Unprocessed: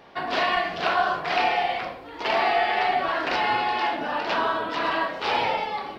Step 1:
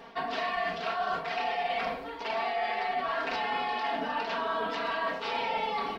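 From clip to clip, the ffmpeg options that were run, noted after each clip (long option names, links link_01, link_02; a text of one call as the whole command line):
ffmpeg -i in.wav -af "aecho=1:1:4.4:0.83,areverse,acompressor=threshold=-28dB:ratio=10,areverse" out.wav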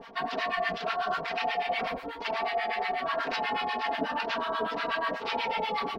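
ffmpeg -i in.wav -filter_complex "[0:a]acrossover=split=930[link_01][link_02];[link_01]aeval=exprs='val(0)*(1-1/2+1/2*cos(2*PI*8.2*n/s))':channel_layout=same[link_03];[link_02]aeval=exprs='val(0)*(1-1/2-1/2*cos(2*PI*8.2*n/s))':channel_layout=same[link_04];[link_03][link_04]amix=inputs=2:normalize=0,volume=6dB" out.wav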